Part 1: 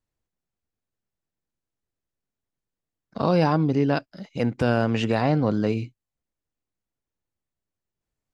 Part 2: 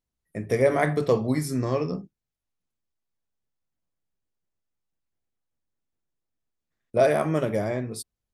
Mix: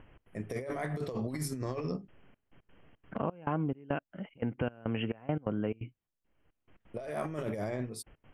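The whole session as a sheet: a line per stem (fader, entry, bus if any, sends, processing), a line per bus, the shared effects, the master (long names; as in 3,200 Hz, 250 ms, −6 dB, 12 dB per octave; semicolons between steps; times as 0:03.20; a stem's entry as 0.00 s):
−4.0 dB, 0.00 s, no send, Chebyshev low-pass filter 3,200 Hz, order 10; upward compression, threshold −27 dBFS; gate pattern "xx.xxx..xxx..x.x" 173 BPM −24 dB
−4.0 dB, 0.00 s, no send, noise gate −29 dBFS, range −6 dB; brickwall limiter −17.5 dBFS, peak gain reduction 8.5 dB; compressor whose output falls as the input rises −29 dBFS, ratio −0.5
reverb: not used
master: downward compressor 2 to 1, threshold −32 dBFS, peak gain reduction 6.5 dB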